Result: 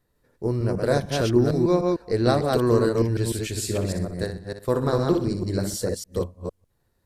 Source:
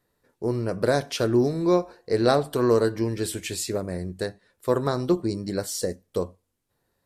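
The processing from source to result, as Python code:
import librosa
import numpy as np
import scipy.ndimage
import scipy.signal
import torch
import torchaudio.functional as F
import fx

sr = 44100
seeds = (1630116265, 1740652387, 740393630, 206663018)

y = fx.reverse_delay(x, sr, ms=151, wet_db=-2.5)
y = fx.low_shelf(y, sr, hz=120.0, db=11.5)
y = fx.room_flutter(y, sr, wall_m=10.6, rt60_s=0.42, at=(3.55, 5.77), fade=0.02)
y = F.gain(torch.from_numpy(y), -2.0).numpy()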